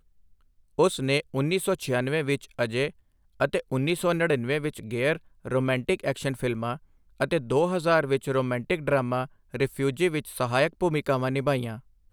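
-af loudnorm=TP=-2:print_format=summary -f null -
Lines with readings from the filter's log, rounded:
Input Integrated:    -26.7 LUFS
Input True Peak:      -8.8 dBTP
Input LRA:             1.0 LU
Input Threshold:     -37.0 LUFS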